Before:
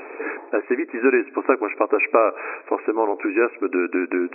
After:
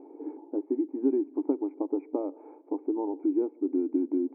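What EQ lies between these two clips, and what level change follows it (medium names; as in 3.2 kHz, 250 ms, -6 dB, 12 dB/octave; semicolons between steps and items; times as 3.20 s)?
cascade formant filter u; treble shelf 2.2 kHz -10.5 dB; 0.0 dB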